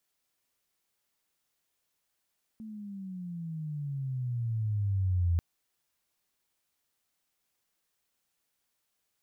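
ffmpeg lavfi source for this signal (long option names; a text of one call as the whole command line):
ffmpeg -f lavfi -i "aevalsrc='pow(10,(-23+17*(t/2.79-1))/20)*sin(2*PI*223*2.79/(-17*log(2)/12)*(exp(-17*log(2)/12*t/2.79)-1))':duration=2.79:sample_rate=44100" out.wav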